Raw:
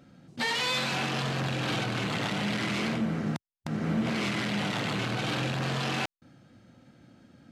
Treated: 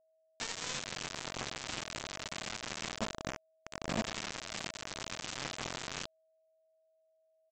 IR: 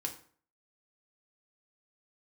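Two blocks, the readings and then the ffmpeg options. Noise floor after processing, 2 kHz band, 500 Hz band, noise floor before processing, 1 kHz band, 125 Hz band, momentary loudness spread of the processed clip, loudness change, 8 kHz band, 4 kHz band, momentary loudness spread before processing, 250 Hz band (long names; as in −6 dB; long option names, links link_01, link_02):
−74 dBFS, −10.5 dB, −10.0 dB, below −85 dBFS, −10.0 dB, −17.5 dB, 6 LU, −10.0 dB, +0.5 dB, −8.5 dB, 5 LU, −15.0 dB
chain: -af "aresample=16000,acrusher=bits=3:mix=0:aa=0.000001,aresample=44100,aeval=exprs='val(0)+0.000794*sin(2*PI*640*n/s)':channel_layout=same,volume=-8.5dB"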